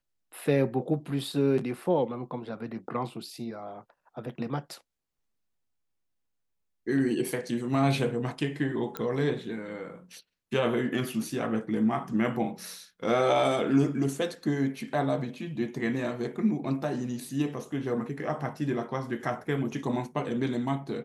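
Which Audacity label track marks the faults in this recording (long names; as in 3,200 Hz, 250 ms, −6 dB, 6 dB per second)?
8.970000	8.970000	click −17 dBFS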